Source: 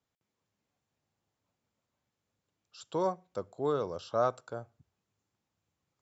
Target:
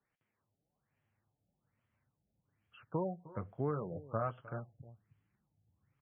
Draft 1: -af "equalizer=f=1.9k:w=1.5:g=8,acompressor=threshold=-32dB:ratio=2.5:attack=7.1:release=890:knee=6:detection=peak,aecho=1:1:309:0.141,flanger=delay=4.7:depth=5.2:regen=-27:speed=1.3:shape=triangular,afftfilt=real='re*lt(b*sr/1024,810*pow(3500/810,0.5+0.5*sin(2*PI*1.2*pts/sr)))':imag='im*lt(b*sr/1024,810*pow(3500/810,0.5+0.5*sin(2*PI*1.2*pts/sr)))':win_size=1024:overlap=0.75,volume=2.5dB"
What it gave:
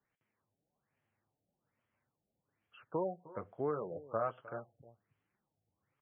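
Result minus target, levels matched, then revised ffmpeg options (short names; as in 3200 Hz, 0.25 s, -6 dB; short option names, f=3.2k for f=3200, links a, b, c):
250 Hz band -3.0 dB
-af "equalizer=f=1.9k:w=1.5:g=8,acompressor=threshold=-32dB:ratio=2.5:attack=7.1:release=890:knee=6:detection=peak,asubboost=boost=4.5:cutoff=210,aecho=1:1:309:0.141,flanger=delay=4.7:depth=5.2:regen=-27:speed=1.3:shape=triangular,afftfilt=real='re*lt(b*sr/1024,810*pow(3500/810,0.5+0.5*sin(2*PI*1.2*pts/sr)))':imag='im*lt(b*sr/1024,810*pow(3500/810,0.5+0.5*sin(2*PI*1.2*pts/sr)))':win_size=1024:overlap=0.75,volume=2.5dB"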